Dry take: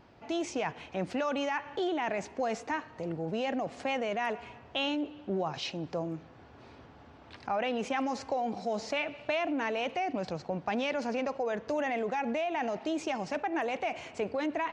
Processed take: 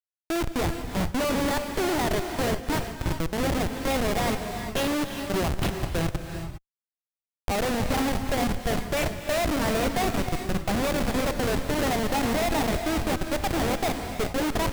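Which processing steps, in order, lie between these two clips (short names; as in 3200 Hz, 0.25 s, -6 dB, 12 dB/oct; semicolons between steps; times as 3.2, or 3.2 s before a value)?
flutter echo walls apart 8.5 m, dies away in 0.22 s; Schmitt trigger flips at -30.5 dBFS; non-linear reverb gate 0.43 s rising, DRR 6 dB; gain +8.5 dB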